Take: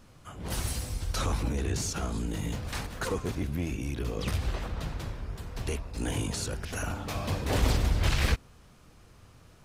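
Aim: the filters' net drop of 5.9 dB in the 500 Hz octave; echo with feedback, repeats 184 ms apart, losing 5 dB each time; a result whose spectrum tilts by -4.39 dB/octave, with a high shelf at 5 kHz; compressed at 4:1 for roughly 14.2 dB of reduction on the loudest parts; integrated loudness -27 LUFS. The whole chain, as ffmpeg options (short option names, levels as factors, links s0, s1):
-af "equalizer=f=500:t=o:g=-7.5,highshelf=f=5000:g=4.5,acompressor=threshold=0.0126:ratio=4,aecho=1:1:184|368|552|736|920|1104|1288:0.562|0.315|0.176|0.0988|0.0553|0.031|0.0173,volume=4.22"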